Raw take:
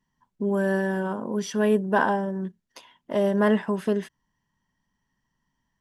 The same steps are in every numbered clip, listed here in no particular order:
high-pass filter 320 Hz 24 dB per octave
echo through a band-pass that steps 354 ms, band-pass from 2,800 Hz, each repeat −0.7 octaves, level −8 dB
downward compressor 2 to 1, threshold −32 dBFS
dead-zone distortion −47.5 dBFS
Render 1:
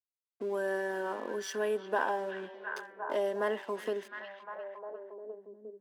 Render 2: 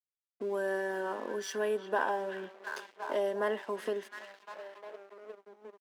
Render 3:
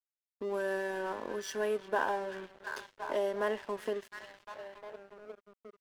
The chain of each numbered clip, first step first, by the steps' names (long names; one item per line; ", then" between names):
dead-zone distortion, then echo through a band-pass that steps, then downward compressor, then high-pass filter
echo through a band-pass that steps, then dead-zone distortion, then downward compressor, then high-pass filter
echo through a band-pass that steps, then downward compressor, then high-pass filter, then dead-zone distortion